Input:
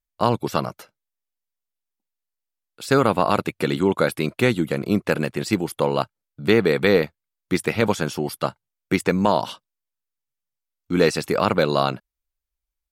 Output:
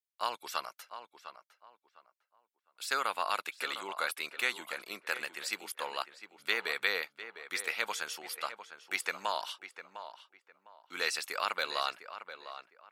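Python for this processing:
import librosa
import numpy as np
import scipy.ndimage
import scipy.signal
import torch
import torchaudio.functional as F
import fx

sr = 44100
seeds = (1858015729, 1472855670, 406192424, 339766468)

p1 = scipy.signal.sosfilt(scipy.signal.butter(2, 1300.0, 'highpass', fs=sr, output='sos'), x)
p2 = p1 + fx.echo_tape(p1, sr, ms=705, feedback_pct=27, wet_db=-10.0, lp_hz=2300.0, drive_db=10.0, wow_cents=22, dry=0)
y = p2 * 10.0 ** (-5.5 / 20.0)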